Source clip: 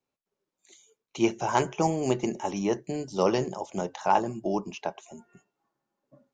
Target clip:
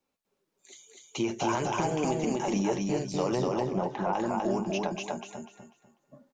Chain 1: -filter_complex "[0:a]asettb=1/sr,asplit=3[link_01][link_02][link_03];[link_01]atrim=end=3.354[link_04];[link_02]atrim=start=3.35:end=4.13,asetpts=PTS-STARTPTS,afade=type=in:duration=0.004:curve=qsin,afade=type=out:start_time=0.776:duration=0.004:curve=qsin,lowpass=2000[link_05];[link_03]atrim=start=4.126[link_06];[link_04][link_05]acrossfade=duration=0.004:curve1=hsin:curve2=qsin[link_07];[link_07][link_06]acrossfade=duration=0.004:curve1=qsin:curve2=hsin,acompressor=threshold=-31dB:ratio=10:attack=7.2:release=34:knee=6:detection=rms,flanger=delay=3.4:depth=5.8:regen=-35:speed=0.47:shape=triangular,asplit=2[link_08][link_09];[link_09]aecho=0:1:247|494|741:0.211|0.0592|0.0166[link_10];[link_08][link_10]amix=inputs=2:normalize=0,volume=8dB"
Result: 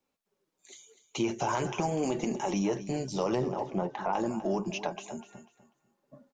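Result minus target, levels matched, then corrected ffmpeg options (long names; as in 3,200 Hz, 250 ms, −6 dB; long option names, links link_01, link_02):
echo-to-direct −11.5 dB
-filter_complex "[0:a]asettb=1/sr,asplit=3[link_01][link_02][link_03];[link_01]atrim=end=3.354[link_04];[link_02]atrim=start=3.35:end=4.13,asetpts=PTS-STARTPTS,afade=type=in:duration=0.004:curve=qsin,afade=type=out:start_time=0.776:duration=0.004:curve=qsin,lowpass=2000[link_05];[link_03]atrim=start=4.126[link_06];[link_04][link_05]acrossfade=duration=0.004:curve1=hsin:curve2=qsin[link_07];[link_07][link_06]acrossfade=duration=0.004:curve1=qsin:curve2=hsin,acompressor=threshold=-31dB:ratio=10:attack=7.2:release=34:knee=6:detection=rms,flanger=delay=3.4:depth=5.8:regen=-35:speed=0.47:shape=triangular,asplit=2[link_08][link_09];[link_09]aecho=0:1:247|494|741|988:0.794|0.222|0.0623|0.0174[link_10];[link_08][link_10]amix=inputs=2:normalize=0,volume=8dB"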